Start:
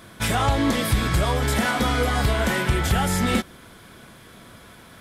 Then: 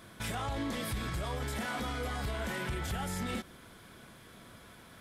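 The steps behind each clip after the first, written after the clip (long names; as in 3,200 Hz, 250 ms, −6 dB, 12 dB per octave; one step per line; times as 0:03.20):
brickwall limiter −20.5 dBFS, peak gain reduction 10 dB
level −7.5 dB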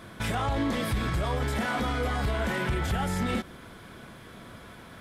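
high-shelf EQ 4,000 Hz −8 dB
level +8 dB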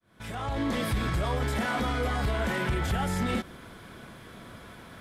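fade in at the beginning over 0.76 s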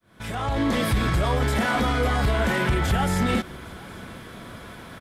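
single-tap delay 814 ms −23.5 dB
level +6 dB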